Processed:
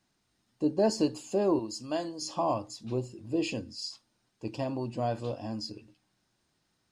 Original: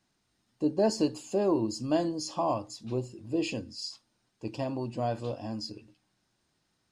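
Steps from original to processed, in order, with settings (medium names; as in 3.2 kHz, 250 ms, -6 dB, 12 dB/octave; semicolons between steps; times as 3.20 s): 1.59–2.22 s: bass shelf 440 Hz -11 dB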